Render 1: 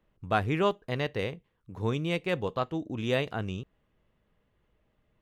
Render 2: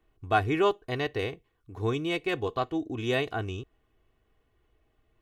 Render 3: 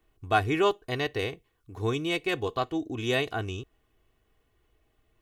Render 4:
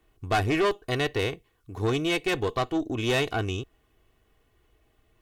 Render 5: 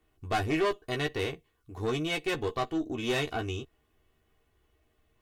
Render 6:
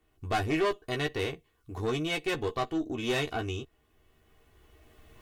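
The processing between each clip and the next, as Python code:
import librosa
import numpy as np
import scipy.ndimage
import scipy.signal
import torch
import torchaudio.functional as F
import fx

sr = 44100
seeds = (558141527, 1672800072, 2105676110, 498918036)

y1 = x + 0.67 * np.pad(x, (int(2.7 * sr / 1000.0), 0))[:len(x)]
y2 = fx.high_shelf(y1, sr, hz=3700.0, db=7.0)
y3 = fx.tube_stage(y2, sr, drive_db=25.0, bias=0.45)
y3 = y3 * 10.0 ** (6.0 / 20.0)
y4 = fx.doubler(y3, sr, ms=13.0, db=-5)
y4 = y4 * 10.0 ** (-5.5 / 20.0)
y5 = fx.recorder_agc(y4, sr, target_db=-27.5, rise_db_per_s=9.8, max_gain_db=30)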